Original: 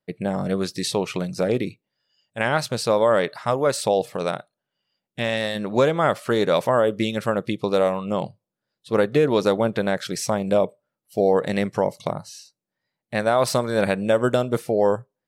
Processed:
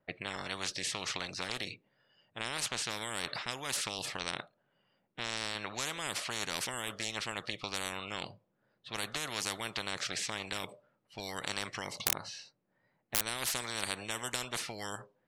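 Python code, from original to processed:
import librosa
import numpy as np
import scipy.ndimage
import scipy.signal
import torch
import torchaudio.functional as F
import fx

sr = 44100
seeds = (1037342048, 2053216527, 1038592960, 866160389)

y = fx.env_lowpass(x, sr, base_hz=1800.0, full_db=-14.0)
y = fx.overflow_wrap(y, sr, gain_db=15.5, at=(12.04, 13.26))
y = fx.spectral_comp(y, sr, ratio=10.0)
y = F.gain(torch.from_numpy(y), -1.0).numpy()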